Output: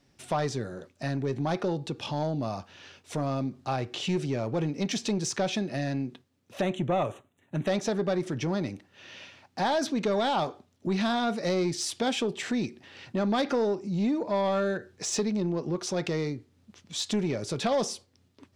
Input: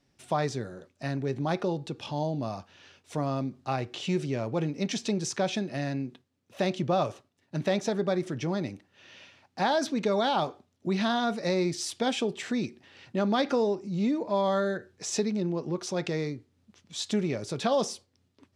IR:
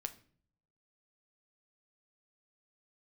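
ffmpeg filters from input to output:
-filter_complex "[0:a]asplit=2[link_01][link_02];[link_02]acompressor=threshold=-37dB:ratio=6,volume=-2.5dB[link_03];[link_01][link_03]amix=inputs=2:normalize=0,asoftclip=type=tanh:threshold=-19dB,asettb=1/sr,asplit=3[link_04][link_05][link_06];[link_04]atrim=end=6.614[link_07];[link_05]atrim=start=6.61:end=7.67,asetpts=PTS-STARTPTS,afade=type=in:duration=0.004:curve=qsin,afade=type=out:start_time=1.056:duration=0.004:curve=qsin,asuperstop=centerf=4900:order=4:qfactor=1.5[link_08];[link_06]atrim=start=7.666[link_09];[link_07][link_08]acrossfade=duration=0.004:curve1=hsin:curve2=qsin[link_10];[link_10][link_09]acrossfade=duration=0.004:curve1=qsin:curve2=hsin"

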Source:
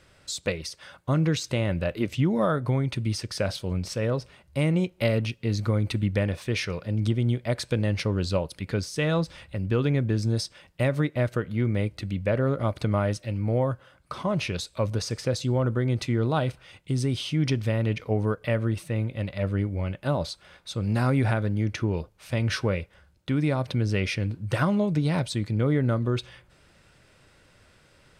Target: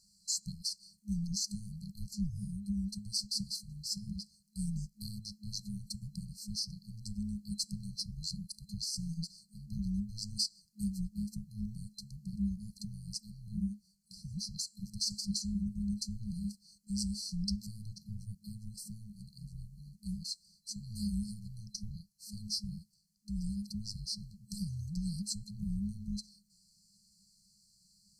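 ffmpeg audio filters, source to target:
ffmpeg -i in.wav -af "afreqshift=-330,lowshelf=frequency=220:width_type=q:width=1.5:gain=-14,afftfilt=real='re*(1-between(b*sr/4096,210,4100))':imag='im*(1-between(b*sr/4096,210,4100))':win_size=4096:overlap=0.75,volume=1dB" out.wav

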